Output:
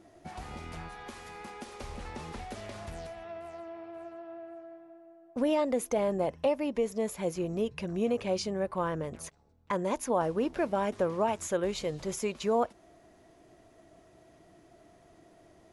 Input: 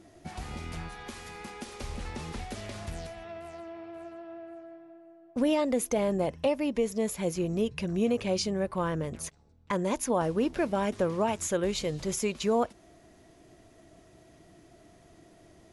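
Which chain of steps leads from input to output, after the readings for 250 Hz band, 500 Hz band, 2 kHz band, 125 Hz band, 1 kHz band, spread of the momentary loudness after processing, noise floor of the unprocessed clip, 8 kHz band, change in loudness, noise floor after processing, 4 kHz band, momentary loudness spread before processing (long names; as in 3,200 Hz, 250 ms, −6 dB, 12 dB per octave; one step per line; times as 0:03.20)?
−3.5 dB, −0.5 dB, −2.5 dB, −4.5 dB, +0.5 dB, 16 LU, −58 dBFS, −5.5 dB, −2.0 dB, −60 dBFS, −4.5 dB, 15 LU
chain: parametric band 800 Hz +6 dB 2.5 octaves
level −5.5 dB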